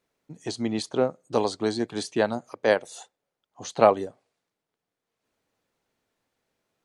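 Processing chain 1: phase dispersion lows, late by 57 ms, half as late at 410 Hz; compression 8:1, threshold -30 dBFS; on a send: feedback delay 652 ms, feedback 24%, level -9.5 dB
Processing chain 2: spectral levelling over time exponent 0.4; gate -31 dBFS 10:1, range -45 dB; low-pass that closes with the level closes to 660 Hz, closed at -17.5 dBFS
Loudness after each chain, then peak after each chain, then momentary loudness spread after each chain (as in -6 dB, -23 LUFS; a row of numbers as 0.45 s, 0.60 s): -37.0 LUFS, -23.5 LUFS; -18.5 dBFS, -5.0 dBFS; 13 LU, 13 LU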